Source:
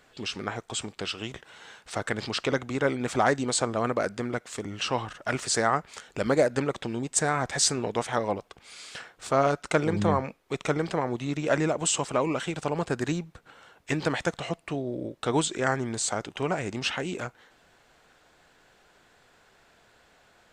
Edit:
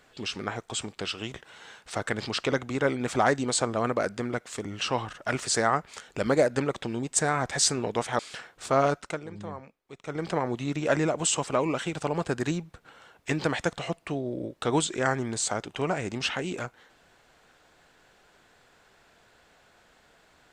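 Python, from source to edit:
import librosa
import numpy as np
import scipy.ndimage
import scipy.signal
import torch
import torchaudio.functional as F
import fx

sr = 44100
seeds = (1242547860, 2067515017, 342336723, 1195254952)

y = fx.edit(x, sr, fx.cut(start_s=8.19, length_s=0.61),
    fx.fade_down_up(start_s=9.54, length_s=1.38, db=-14.5, fade_s=0.26), tone=tone)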